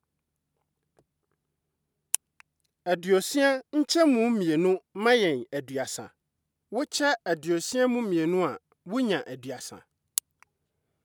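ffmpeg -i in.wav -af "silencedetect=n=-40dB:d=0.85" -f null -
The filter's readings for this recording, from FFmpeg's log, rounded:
silence_start: 0.00
silence_end: 2.14 | silence_duration: 2.14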